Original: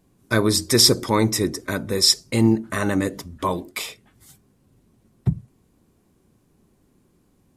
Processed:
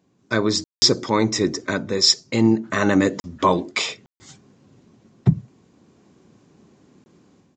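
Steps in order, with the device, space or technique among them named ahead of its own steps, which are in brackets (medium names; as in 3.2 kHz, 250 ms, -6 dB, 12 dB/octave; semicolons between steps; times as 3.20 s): call with lost packets (high-pass 130 Hz 12 dB/octave; resampled via 16 kHz; level rider gain up to 10 dB; lost packets bursts); trim -1 dB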